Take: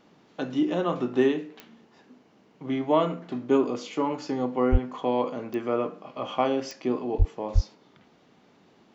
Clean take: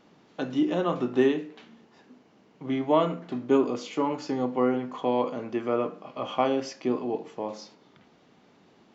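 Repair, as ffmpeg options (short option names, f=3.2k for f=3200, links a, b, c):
-filter_complex "[0:a]adeclick=t=4,asplit=3[a][b][c];[a]afade=t=out:st=4.71:d=0.02[d];[b]highpass=f=140:w=0.5412,highpass=f=140:w=1.3066,afade=t=in:st=4.71:d=0.02,afade=t=out:st=4.83:d=0.02[e];[c]afade=t=in:st=4.83:d=0.02[f];[d][e][f]amix=inputs=3:normalize=0,asplit=3[g][h][i];[g]afade=t=out:st=7.18:d=0.02[j];[h]highpass=f=140:w=0.5412,highpass=f=140:w=1.3066,afade=t=in:st=7.18:d=0.02,afade=t=out:st=7.3:d=0.02[k];[i]afade=t=in:st=7.3:d=0.02[l];[j][k][l]amix=inputs=3:normalize=0,asplit=3[m][n][o];[m]afade=t=out:st=7.54:d=0.02[p];[n]highpass=f=140:w=0.5412,highpass=f=140:w=1.3066,afade=t=in:st=7.54:d=0.02,afade=t=out:st=7.66:d=0.02[q];[o]afade=t=in:st=7.66:d=0.02[r];[p][q][r]amix=inputs=3:normalize=0"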